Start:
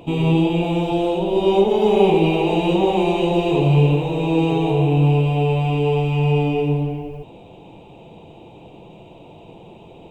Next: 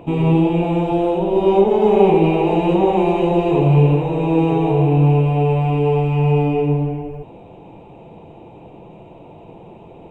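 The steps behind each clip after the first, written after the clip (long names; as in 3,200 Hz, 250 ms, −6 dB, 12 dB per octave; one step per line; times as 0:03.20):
high shelf with overshoot 2,500 Hz −8.5 dB, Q 1.5
level +2 dB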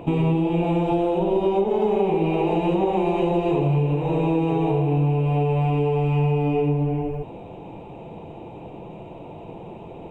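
downward compressor, threshold −20 dBFS, peak gain reduction 12 dB
level +2 dB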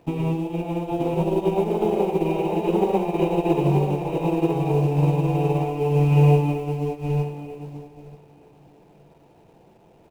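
in parallel at −9.5 dB: bit-depth reduction 6 bits, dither none
on the sum: repeating echo 933 ms, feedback 26%, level −3.5 dB
expander for the loud parts 2.5 to 1, over −26 dBFS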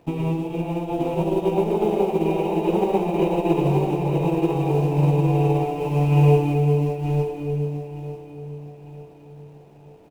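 repeating echo 899 ms, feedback 44%, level −15.5 dB
convolution reverb, pre-delay 3 ms, DRR 8.5 dB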